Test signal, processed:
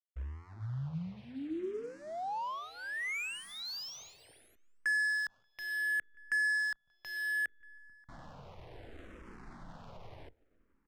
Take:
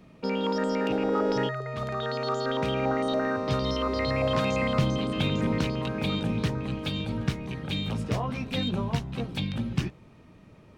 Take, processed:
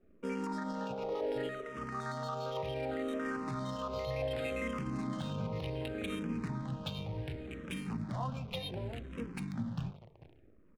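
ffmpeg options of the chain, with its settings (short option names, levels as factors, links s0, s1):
-filter_complex "[0:a]bandreject=f=50:t=h:w=6,bandreject=f=100:t=h:w=6,bandreject=f=150:t=h:w=6,bandreject=f=200:t=h:w=6,bandreject=f=250:t=h:w=6,bandreject=f=300:t=h:w=6,bandreject=f=350:t=h:w=6,bandreject=f=400:t=h:w=6,bandreject=f=450:t=h:w=6,asplit=2[s0][s1];[s1]aecho=0:1:439|878|1317:0.1|0.038|0.0144[s2];[s0][s2]amix=inputs=2:normalize=0,acrusher=bits=8:dc=4:mix=0:aa=0.000001,alimiter=limit=0.0891:level=0:latency=1:release=64,adynamicsmooth=sensitivity=7.5:basefreq=900,asplit=2[s3][s4];[s4]adelay=583.1,volume=0.0447,highshelf=f=4000:g=-13.1[s5];[s3][s5]amix=inputs=2:normalize=0,asplit=2[s6][s7];[s7]afreqshift=-0.67[s8];[s6][s8]amix=inputs=2:normalize=1,volume=0.631"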